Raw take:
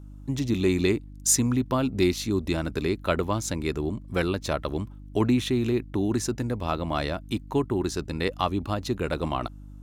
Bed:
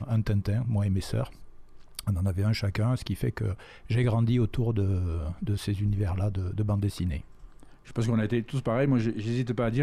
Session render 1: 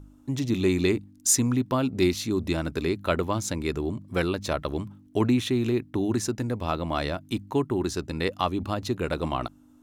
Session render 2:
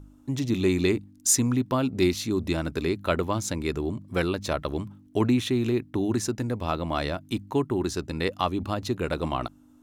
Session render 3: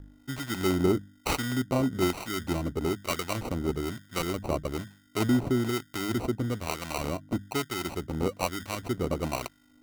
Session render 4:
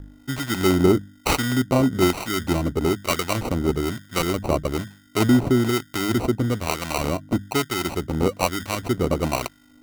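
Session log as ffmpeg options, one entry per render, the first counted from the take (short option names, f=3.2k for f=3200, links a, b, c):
-af "bandreject=f=50:t=h:w=4,bandreject=f=100:t=h:w=4,bandreject=f=150:t=h:w=4,bandreject=f=200:t=h:w=4"
-af anull
-filter_complex "[0:a]acrusher=samples=26:mix=1:aa=0.000001,acrossover=split=980[a][b];[a]aeval=exprs='val(0)*(1-0.7/2+0.7/2*cos(2*PI*1.1*n/s))':c=same[c];[b]aeval=exprs='val(0)*(1-0.7/2-0.7/2*cos(2*PI*1.1*n/s))':c=same[d];[c][d]amix=inputs=2:normalize=0"
-af "volume=7.5dB"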